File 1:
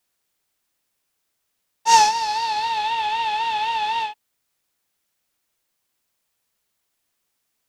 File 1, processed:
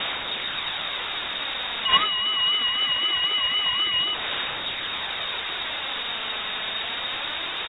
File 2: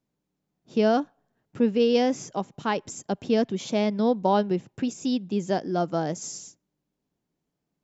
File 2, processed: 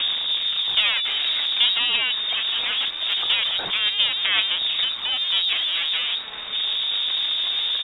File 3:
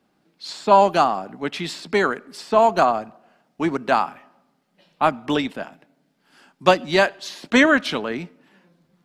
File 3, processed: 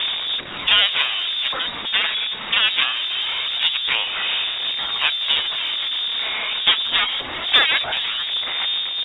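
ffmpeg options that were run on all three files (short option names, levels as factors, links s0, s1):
-filter_complex "[0:a]aeval=exprs='val(0)+0.5*0.141*sgn(val(0))':c=same,equalizer=f=70:w=0.35:g=14.5,asplit=2[s0][s1];[s1]acompressor=threshold=0.1:ratio=6,volume=1.41[s2];[s0][s2]amix=inputs=2:normalize=0,aeval=exprs='1.68*(cos(1*acos(clip(val(0)/1.68,-1,1)))-cos(1*PI/2))+0.266*(cos(2*acos(clip(val(0)/1.68,-1,1)))-cos(2*PI/2))+0.237*(cos(5*acos(clip(val(0)/1.68,-1,1)))-cos(5*PI/2))+0.0133*(cos(6*acos(clip(val(0)/1.68,-1,1)))-cos(6*PI/2))+0.841*(cos(7*acos(clip(val(0)/1.68,-1,1)))-cos(7*PI/2))':c=same,lowpass=f=3200:t=q:w=0.5098,lowpass=f=3200:t=q:w=0.6013,lowpass=f=3200:t=q:w=0.9,lowpass=f=3200:t=q:w=2.563,afreqshift=-3800,asplit=2[s3][s4];[s4]aecho=0:1:416:0.075[s5];[s3][s5]amix=inputs=2:normalize=0,aphaser=in_gain=1:out_gain=1:delay=4.7:decay=0.28:speed=0.23:type=sinusoidal,volume=0.266"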